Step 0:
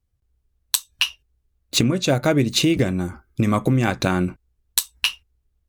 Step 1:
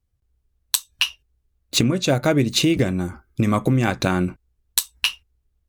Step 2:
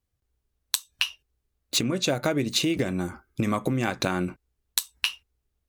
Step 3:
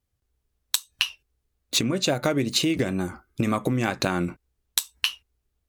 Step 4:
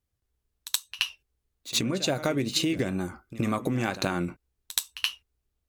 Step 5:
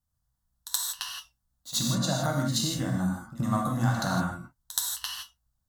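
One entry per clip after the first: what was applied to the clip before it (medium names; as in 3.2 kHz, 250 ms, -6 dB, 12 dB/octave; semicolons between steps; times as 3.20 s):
no audible change
bass shelf 140 Hz -10.5 dB; compression, threshold -21 dBFS, peak gain reduction 8.5 dB
wow and flutter 53 cents; trim +1.5 dB
pre-echo 75 ms -14.5 dB; trim -3.5 dB
static phaser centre 1 kHz, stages 4; gated-style reverb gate 190 ms flat, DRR -1.5 dB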